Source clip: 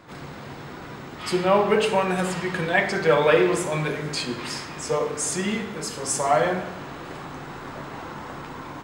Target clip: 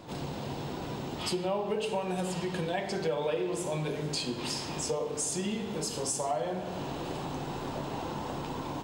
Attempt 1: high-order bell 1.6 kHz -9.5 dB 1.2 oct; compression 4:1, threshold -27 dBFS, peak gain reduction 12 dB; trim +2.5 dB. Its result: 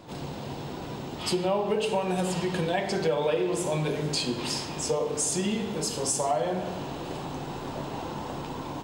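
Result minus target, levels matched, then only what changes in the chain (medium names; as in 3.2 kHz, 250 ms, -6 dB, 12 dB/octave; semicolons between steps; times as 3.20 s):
compression: peak gain reduction -5 dB
change: compression 4:1, threshold -33.5 dBFS, peak gain reduction 17 dB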